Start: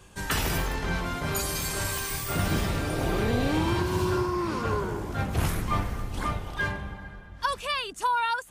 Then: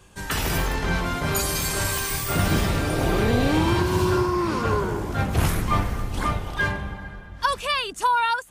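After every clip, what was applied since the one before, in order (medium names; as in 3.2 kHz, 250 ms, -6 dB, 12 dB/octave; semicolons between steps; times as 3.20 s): level rider gain up to 5 dB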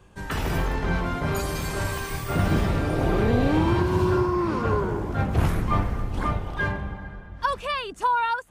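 peaking EQ 14 kHz -12.5 dB 2.7 oct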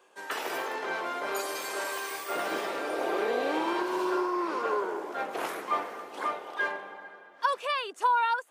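high-pass 390 Hz 24 dB/octave; trim -2 dB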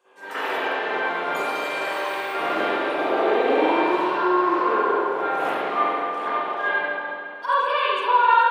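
reverberation RT60 1.9 s, pre-delay 44 ms, DRR -15.5 dB; trim -7 dB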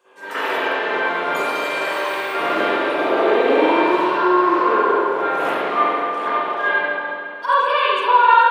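band-stop 770 Hz, Q 12; trim +4.5 dB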